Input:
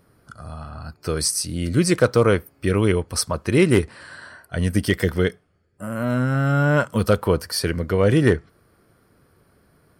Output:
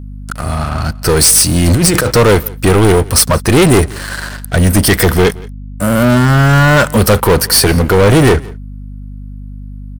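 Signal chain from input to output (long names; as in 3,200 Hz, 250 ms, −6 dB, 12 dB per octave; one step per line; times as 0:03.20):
0:01.67–0:02.07: compressor whose output falls as the input rises −25 dBFS, ratio −1
high-shelf EQ 8,100 Hz +10.5 dB
leveller curve on the samples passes 5
on a send: single-tap delay 172 ms −23 dB
on the sum: mains hum 50 Hz, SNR 16 dB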